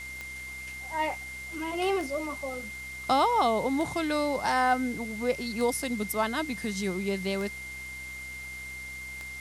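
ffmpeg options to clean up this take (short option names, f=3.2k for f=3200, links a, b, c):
-af "adeclick=t=4,bandreject=f=64.3:t=h:w=4,bandreject=f=128.6:t=h:w=4,bandreject=f=192.9:t=h:w=4,bandreject=f=257.2:t=h:w=4,bandreject=f=321.5:t=h:w=4,bandreject=f=385.8:t=h:w=4,bandreject=f=2.1k:w=30,afwtdn=0.004"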